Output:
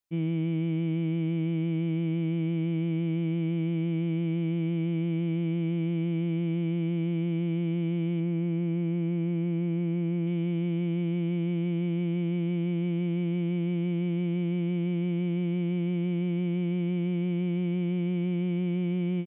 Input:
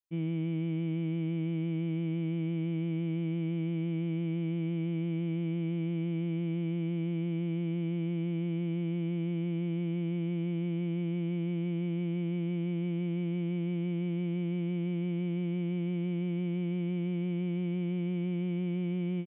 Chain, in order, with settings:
0:08.20–0:10.27: low-pass filter 2,400 Hz 12 dB per octave
level +4 dB

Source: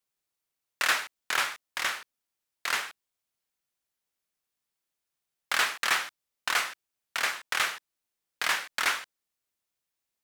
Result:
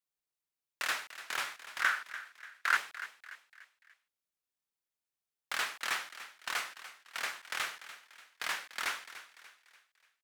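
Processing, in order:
0:01.80–0:02.77: parametric band 1,500 Hz +15 dB 0.78 octaves
echo with shifted repeats 292 ms, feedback 44%, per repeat +55 Hz, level −14 dB
level −8.5 dB

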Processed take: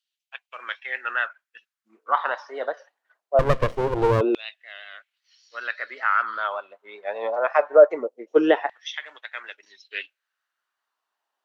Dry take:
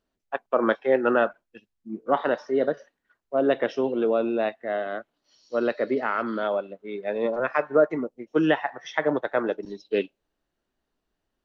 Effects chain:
pitch vibrato 5.2 Hz 49 cents
auto-filter high-pass saw down 0.23 Hz 370–3,300 Hz
0:03.39–0:04.21: windowed peak hold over 33 samples

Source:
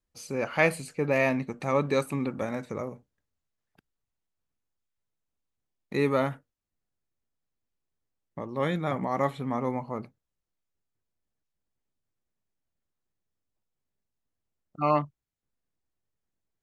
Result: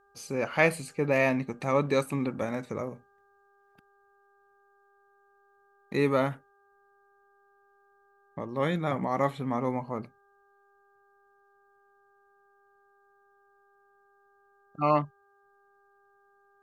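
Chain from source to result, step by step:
hum with harmonics 400 Hz, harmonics 4, −65 dBFS −1 dB per octave

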